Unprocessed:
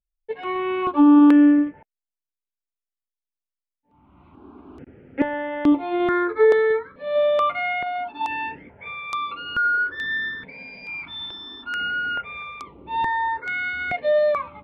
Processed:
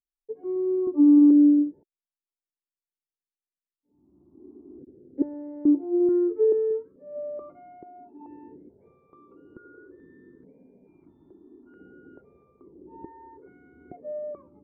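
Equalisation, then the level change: synth low-pass 360 Hz, resonance Q 3.8; air absorption 390 m; low shelf 120 Hz -8.5 dB; -8.5 dB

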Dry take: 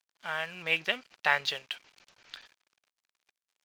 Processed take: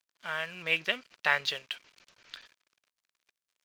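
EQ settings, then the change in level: bell 800 Hz -7.5 dB 0.23 oct; 0.0 dB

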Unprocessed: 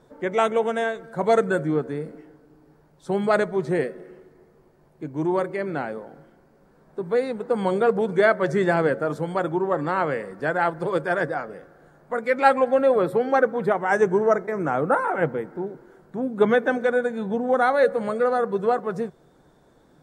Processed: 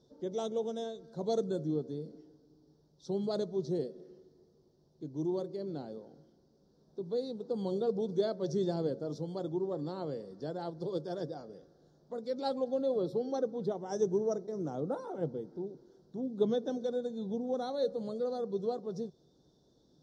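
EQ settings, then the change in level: EQ curve 390 Hz 0 dB, 2400 Hz -21 dB, 3600 Hz +5 dB, 5700 Hz +11 dB, 8200 Hz -12 dB; dynamic EQ 1800 Hz, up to -7 dB, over -46 dBFS, Q 0.97; HPF 42 Hz; -9.0 dB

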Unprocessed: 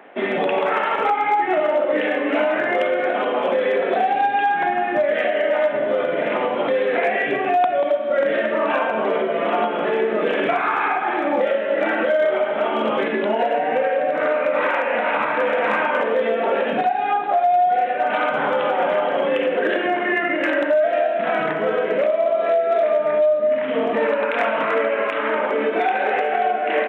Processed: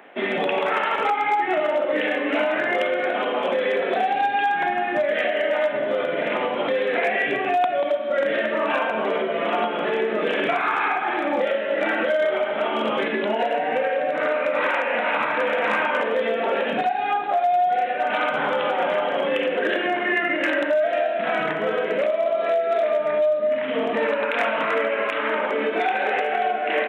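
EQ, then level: HPF 110 Hz; low shelf 140 Hz +6 dB; high shelf 2300 Hz +9 dB; -4.0 dB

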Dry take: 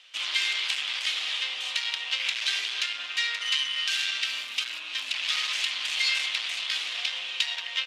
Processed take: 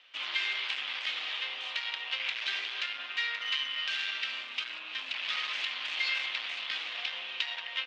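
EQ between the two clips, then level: HPF 110 Hz 12 dB/oct; LPF 3900 Hz 12 dB/oct; high shelf 3000 Hz -8.5 dB; 0.0 dB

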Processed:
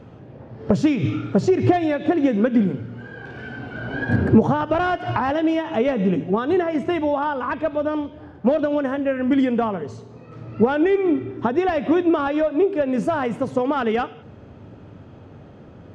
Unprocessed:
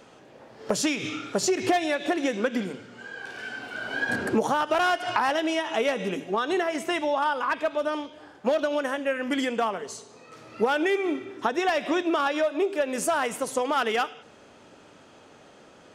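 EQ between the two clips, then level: tape spacing loss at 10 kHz 25 dB; bell 100 Hz +11 dB 1.4 oct; low shelf 310 Hz +11.5 dB; +2.5 dB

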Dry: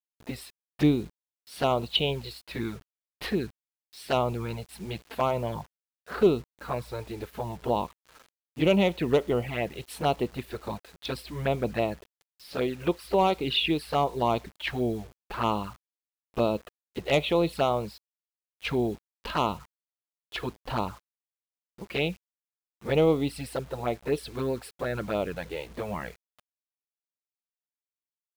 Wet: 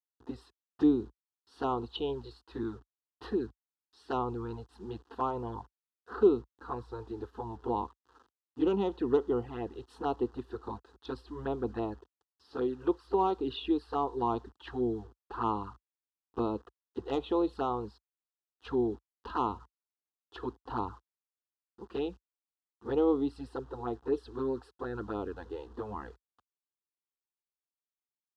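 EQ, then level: HPF 51 Hz 24 dB/oct; tape spacing loss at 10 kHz 26 dB; fixed phaser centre 600 Hz, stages 6; 0.0 dB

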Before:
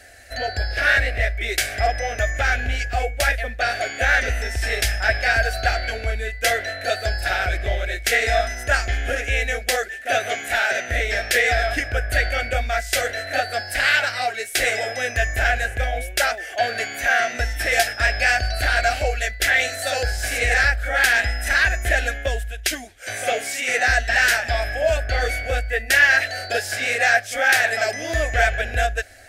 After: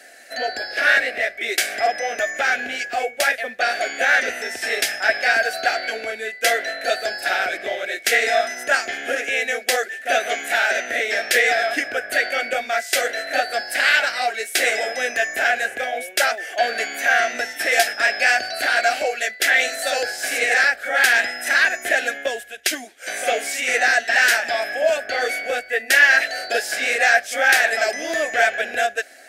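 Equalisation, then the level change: HPF 220 Hz 24 dB/oct; +1.5 dB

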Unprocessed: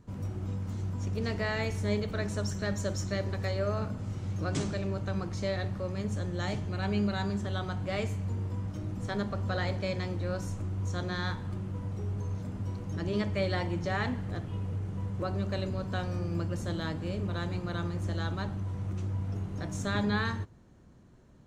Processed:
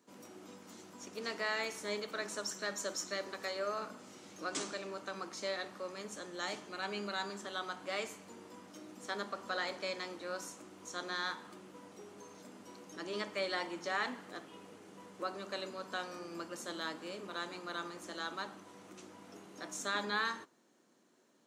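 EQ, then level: dynamic EQ 1200 Hz, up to +6 dB, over -52 dBFS, Q 1.6; HPF 260 Hz 24 dB/oct; high shelf 2600 Hz +10 dB; -7.0 dB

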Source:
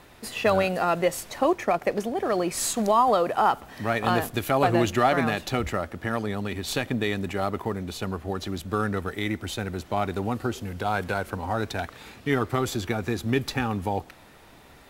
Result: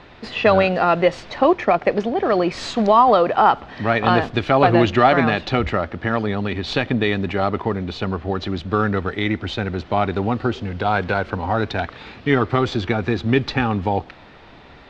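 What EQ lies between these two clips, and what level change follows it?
LPF 4400 Hz 24 dB/oct; +7.0 dB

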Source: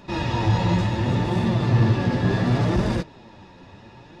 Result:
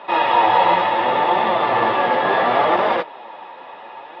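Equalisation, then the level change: speaker cabinet 480–3700 Hz, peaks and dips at 500 Hz +4 dB, 780 Hz +4 dB, 1200 Hz +5 dB, 2100 Hz +6 dB, 3200 Hz +8 dB; bell 830 Hz +11 dB 2 oct; +2.0 dB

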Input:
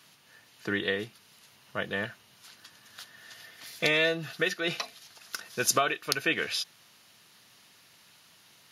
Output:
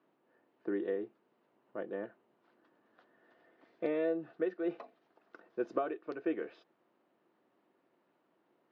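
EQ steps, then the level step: ladder band-pass 410 Hz, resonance 45%; air absorption 78 m; notch 430 Hz, Q 12; +7.5 dB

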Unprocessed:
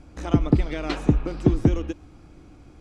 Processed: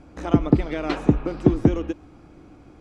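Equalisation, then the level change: low shelf 120 Hz -10 dB; high shelf 2600 Hz -9 dB; +4.5 dB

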